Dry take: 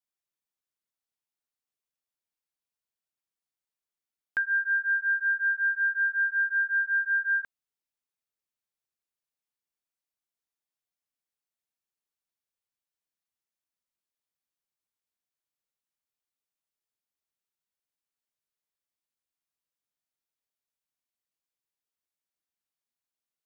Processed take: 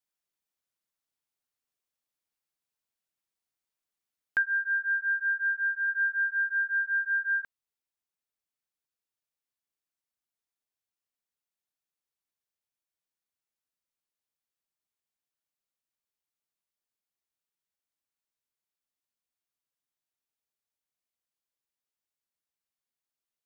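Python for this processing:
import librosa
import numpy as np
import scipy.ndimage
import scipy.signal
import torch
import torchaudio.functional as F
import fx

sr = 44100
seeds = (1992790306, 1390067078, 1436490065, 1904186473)

y = fx.lowpass(x, sr, hz=1300.0, slope=6, at=(4.42, 5.87), fade=0.02)
y = fx.rider(y, sr, range_db=10, speed_s=0.5)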